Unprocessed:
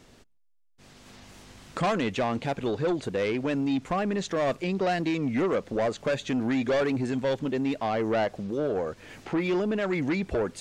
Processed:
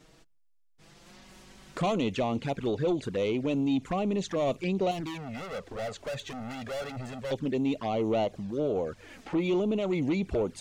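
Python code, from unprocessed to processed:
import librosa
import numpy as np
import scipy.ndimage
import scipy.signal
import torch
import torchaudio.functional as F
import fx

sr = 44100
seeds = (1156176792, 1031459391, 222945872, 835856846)

y = fx.overload_stage(x, sr, gain_db=30.5, at=(4.91, 7.31))
y = fx.env_flanger(y, sr, rest_ms=7.1, full_db=-24.5)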